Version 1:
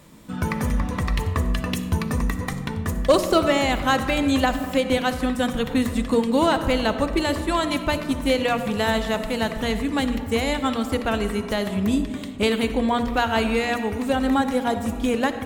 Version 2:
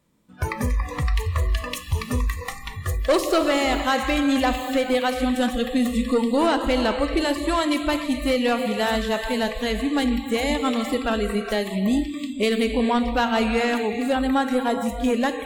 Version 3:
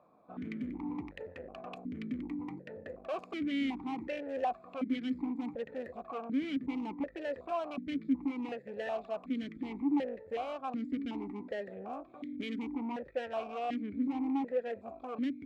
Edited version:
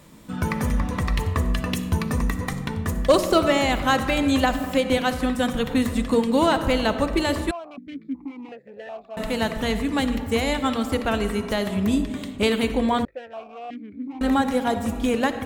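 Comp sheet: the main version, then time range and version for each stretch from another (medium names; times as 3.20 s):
1
7.51–9.17 s: from 3
13.05–14.21 s: from 3
not used: 2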